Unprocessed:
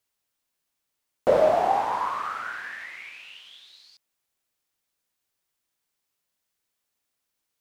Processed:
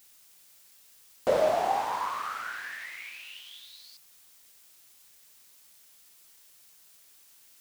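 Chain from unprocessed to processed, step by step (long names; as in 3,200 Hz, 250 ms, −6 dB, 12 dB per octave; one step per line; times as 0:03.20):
in parallel at −10.5 dB: bit-depth reduction 8 bits, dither triangular
on the sum: high-shelf EQ 2,500 Hz +10 dB
level −8 dB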